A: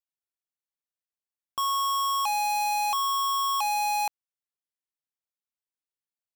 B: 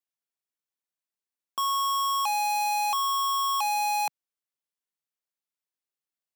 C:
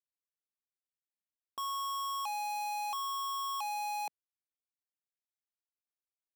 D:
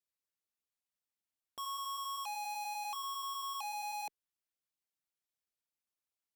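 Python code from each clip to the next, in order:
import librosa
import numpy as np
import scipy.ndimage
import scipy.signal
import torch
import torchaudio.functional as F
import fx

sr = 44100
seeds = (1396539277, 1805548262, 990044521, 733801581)

y1 = scipy.signal.sosfilt(scipy.signal.butter(4, 150.0, 'highpass', fs=sr, output='sos'), x)
y2 = fx.wiener(y1, sr, points=41)
y2 = fx.leveller(y2, sr, passes=2)
y2 = y2 * 10.0 ** (-8.5 / 20.0)
y3 = fx.cheby_harmonics(y2, sr, harmonics=(5,), levels_db=(-20,), full_scale_db=-33.5)
y3 = fx.filter_lfo_notch(y3, sr, shape='sine', hz=5.1, low_hz=360.0, high_hz=1900.0, q=2.8)
y3 = y3 * 10.0 ** (-2.5 / 20.0)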